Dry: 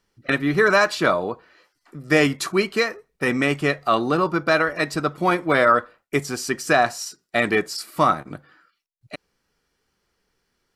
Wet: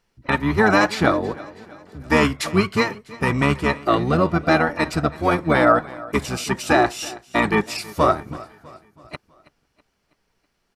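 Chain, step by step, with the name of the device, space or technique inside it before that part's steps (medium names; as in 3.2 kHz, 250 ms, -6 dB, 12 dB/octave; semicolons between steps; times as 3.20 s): feedback delay 325 ms, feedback 49%, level -20 dB; octave pedal (harmony voices -12 st -1 dB); trim -1 dB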